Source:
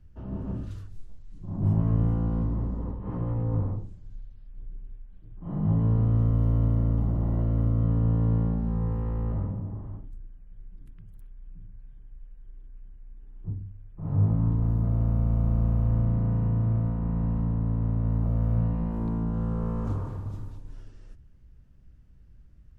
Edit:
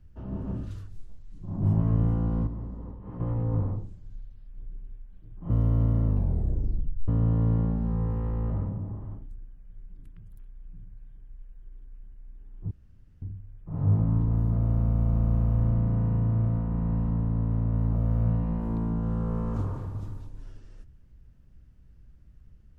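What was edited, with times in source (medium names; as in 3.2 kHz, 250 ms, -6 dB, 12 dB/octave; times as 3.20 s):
2.47–3.20 s: gain -7 dB
5.50–6.32 s: delete
6.86 s: tape stop 1.04 s
13.53 s: insert room tone 0.51 s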